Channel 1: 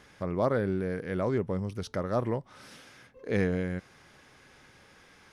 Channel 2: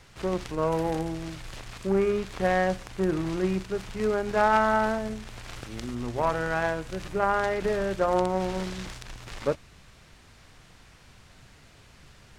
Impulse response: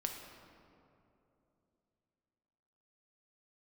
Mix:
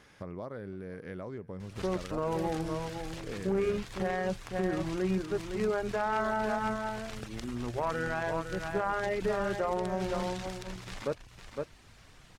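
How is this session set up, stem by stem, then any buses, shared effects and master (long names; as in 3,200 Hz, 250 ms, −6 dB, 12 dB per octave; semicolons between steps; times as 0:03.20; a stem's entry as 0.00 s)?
−2.5 dB, 0.00 s, no send, echo send −23 dB, downward compressor 5 to 1, threshold −36 dBFS, peak gain reduction 13 dB
−2.0 dB, 1.60 s, no send, echo send −8 dB, reverb reduction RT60 0.56 s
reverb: not used
echo: single-tap delay 509 ms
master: brickwall limiter −21 dBFS, peak gain reduction 8.5 dB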